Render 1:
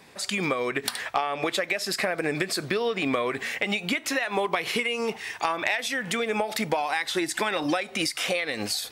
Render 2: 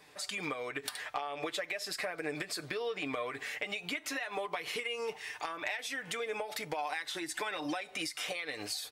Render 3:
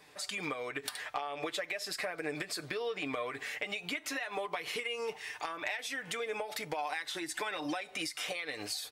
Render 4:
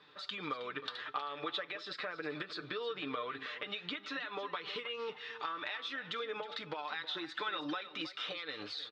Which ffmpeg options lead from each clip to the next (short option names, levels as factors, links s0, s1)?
-af "equalizer=f=180:w=1.1:g=-7.5,acompressor=threshold=0.02:ratio=1.5,aecho=1:1:6.7:0.53,volume=0.447"
-af anull
-af "highpass=110,equalizer=f=700:t=q:w=4:g=-10,equalizer=f=1300:t=q:w=4:g=9,equalizer=f=2200:t=q:w=4:g=-7,equalizer=f=3700:t=q:w=4:g=8,lowpass=f=4000:w=0.5412,lowpass=f=4000:w=1.3066,aecho=1:1:316:0.2,volume=0.75"